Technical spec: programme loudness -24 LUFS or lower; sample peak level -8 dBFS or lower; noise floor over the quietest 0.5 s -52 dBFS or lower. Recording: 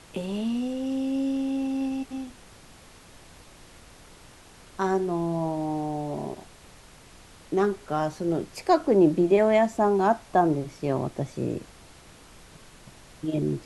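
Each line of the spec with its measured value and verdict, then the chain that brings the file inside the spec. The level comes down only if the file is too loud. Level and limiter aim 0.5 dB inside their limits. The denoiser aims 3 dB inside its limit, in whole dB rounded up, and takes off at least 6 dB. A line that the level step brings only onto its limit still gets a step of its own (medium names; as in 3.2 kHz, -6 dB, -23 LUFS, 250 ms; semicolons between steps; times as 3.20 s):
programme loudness -26.0 LUFS: pass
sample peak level -8.5 dBFS: pass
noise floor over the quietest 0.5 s -50 dBFS: fail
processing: noise reduction 6 dB, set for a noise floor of -50 dBFS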